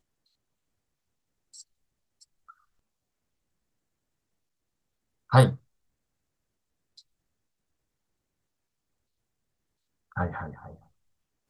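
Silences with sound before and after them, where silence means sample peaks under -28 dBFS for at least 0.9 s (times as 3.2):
5.52–10.17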